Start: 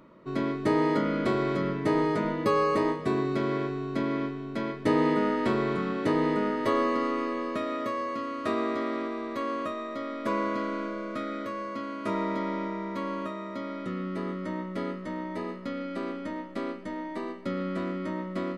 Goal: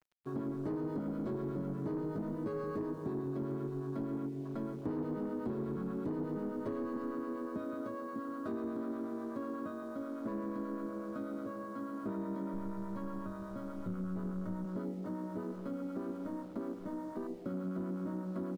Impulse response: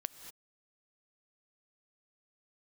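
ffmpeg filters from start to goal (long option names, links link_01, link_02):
-filter_complex "[0:a]acrossover=split=550[link_01][link_02];[link_01]aeval=exprs='val(0)*(1-0.5/2+0.5/2*cos(2*PI*8.2*n/s))':channel_layout=same[link_03];[link_02]aeval=exprs='val(0)*(1-0.5/2-0.5/2*cos(2*PI*8.2*n/s))':channel_layout=same[link_04];[link_03][link_04]amix=inputs=2:normalize=0,asplit=2[link_05][link_06];[link_06]adelay=172,lowpass=frequency=2000:poles=1,volume=-12.5dB,asplit=2[link_07][link_08];[link_08]adelay=172,lowpass=frequency=2000:poles=1,volume=0.34,asplit=2[link_09][link_10];[link_10]adelay=172,lowpass=frequency=2000:poles=1,volume=0.34[link_11];[link_05][link_07][link_09][link_11]amix=inputs=4:normalize=0,acrusher=bits=7:mix=0:aa=0.000001,highshelf=frequency=5100:gain=-3.5,acrossover=split=420|3000[link_12][link_13][link_14];[link_13]acompressor=threshold=-46dB:ratio=4[link_15];[link_12][link_15][link_14]amix=inputs=3:normalize=0,asplit=3[link_16][link_17][link_18];[link_16]afade=type=out:start_time=12.53:duration=0.02[link_19];[link_17]asubboost=boost=7:cutoff=99,afade=type=in:start_time=12.53:duration=0.02,afade=type=out:start_time=14.64:duration=0.02[link_20];[link_18]afade=type=in:start_time=14.64:duration=0.02[link_21];[link_19][link_20][link_21]amix=inputs=3:normalize=0,afwtdn=0.00708,asoftclip=type=tanh:threshold=-26dB,acompressor=threshold=-34dB:ratio=6"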